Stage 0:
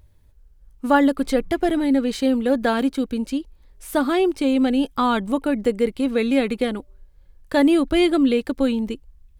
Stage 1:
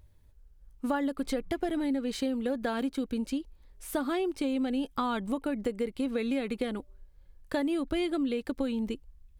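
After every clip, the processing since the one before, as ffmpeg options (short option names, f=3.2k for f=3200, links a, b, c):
-af "acompressor=threshold=-22dB:ratio=6,volume=-5dB"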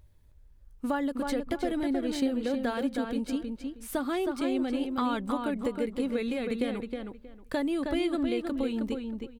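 -filter_complex "[0:a]asplit=2[a][b];[b]adelay=316,lowpass=f=3.5k:p=1,volume=-4.5dB,asplit=2[c][d];[d]adelay=316,lowpass=f=3.5k:p=1,volume=0.21,asplit=2[e][f];[f]adelay=316,lowpass=f=3.5k:p=1,volume=0.21[g];[a][c][e][g]amix=inputs=4:normalize=0"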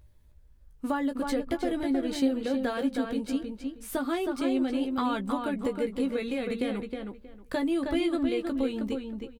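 -filter_complex "[0:a]asplit=2[a][b];[b]adelay=15,volume=-7.5dB[c];[a][c]amix=inputs=2:normalize=0"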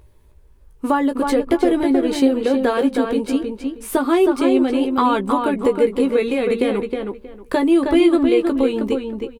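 -af "equalizer=f=400:t=o:w=0.67:g=11,equalizer=f=1k:t=o:w=0.67:g=8,equalizer=f=2.5k:t=o:w=0.67:g=4,equalizer=f=10k:t=o:w=0.67:g=4,volume=6.5dB"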